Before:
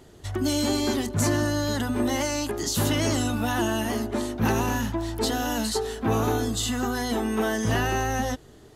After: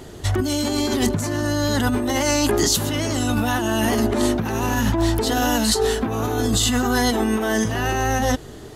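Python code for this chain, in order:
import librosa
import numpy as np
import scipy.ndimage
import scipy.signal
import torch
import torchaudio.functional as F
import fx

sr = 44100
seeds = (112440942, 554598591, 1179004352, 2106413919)

y = fx.over_compress(x, sr, threshold_db=-29.0, ratio=-1.0)
y = y * librosa.db_to_amplitude(8.5)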